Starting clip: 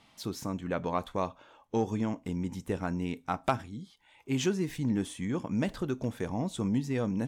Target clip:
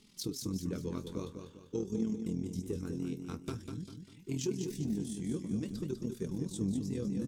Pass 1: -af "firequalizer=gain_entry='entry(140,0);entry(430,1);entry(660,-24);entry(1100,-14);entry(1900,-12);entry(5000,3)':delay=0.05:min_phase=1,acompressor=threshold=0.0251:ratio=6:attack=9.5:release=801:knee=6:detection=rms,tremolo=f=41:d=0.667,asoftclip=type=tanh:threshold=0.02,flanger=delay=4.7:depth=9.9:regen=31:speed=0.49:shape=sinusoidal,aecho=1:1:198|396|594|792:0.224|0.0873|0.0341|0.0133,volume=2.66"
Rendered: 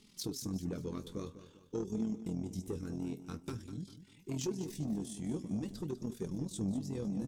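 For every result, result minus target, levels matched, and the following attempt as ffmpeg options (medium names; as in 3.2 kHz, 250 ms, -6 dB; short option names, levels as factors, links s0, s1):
saturation: distortion +12 dB; echo-to-direct -6 dB
-af "firequalizer=gain_entry='entry(140,0);entry(430,1);entry(660,-24);entry(1100,-14);entry(1900,-12);entry(5000,3)':delay=0.05:min_phase=1,acompressor=threshold=0.0251:ratio=6:attack=9.5:release=801:knee=6:detection=rms,tremolo=f=41:d=0.667,asoftclip=type=tanh:threshold=0.0501,flanger=delay=4.7:depth=9.9:regen=31:speed=0.49:shape=sinusoidal,aecho=1:1:198|396|594|792:0.224|0.0873|0.0341|0.0133,volume=2.66"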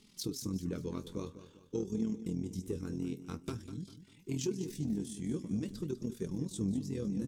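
echo-to-direct -6 dB
-af "firequalizer=gain_entry='entry(140,0);entry(430,1);entry(660,-24);entry(1100,-14);entry(1900,-12);entry(5000,3)':delay=0.05:min_phase=1,acompressor=threshold=0.0251:ratio=6:attack=9.5:release=801:knee=6:detection=rms,tremolo=f=41:d=0.667,asoftclip=type=tanh:threshold=0.0501,flanger=delay=4.7:depth=9.9:regen=31:speed=0.49:shape=sinusoidal,aecho=1:1:198|396|594|792|990:0.447|0.174|0.0679|0.0265|0.0103,volume=2.66"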